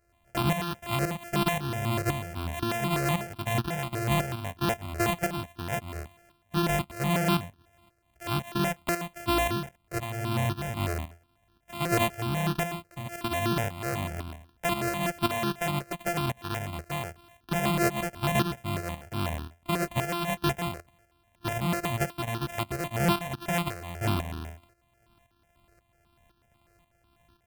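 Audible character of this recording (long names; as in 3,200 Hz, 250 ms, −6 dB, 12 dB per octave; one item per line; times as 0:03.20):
a buzz of ramps at a fixed pitch in blocks of 128 samples
tremolo saw up 1.9 Hz, depth 65%
notches that jump at a steady rate 8.1 Hz 940–2,100 Hz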